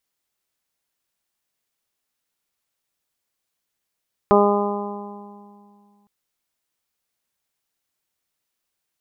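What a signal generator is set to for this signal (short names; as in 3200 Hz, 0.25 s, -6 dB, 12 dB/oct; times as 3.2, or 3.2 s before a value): additive tone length 1.76 s, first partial 204 Hz, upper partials 5/1/0/-1/-2.5 dB, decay 2.55 s, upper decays 1.81/1.64/2.19/2.04/1.47 s, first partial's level -18 dB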